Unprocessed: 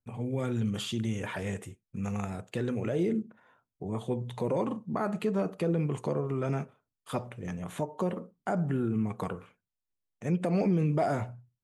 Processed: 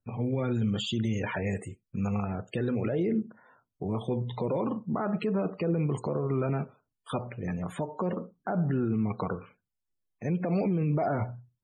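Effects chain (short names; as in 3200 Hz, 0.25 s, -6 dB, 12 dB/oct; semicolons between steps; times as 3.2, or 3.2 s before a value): loudest bins only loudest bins 64; limiter -24.5 dBFS, peak gain reduction 6.5 dB; gain +4 dB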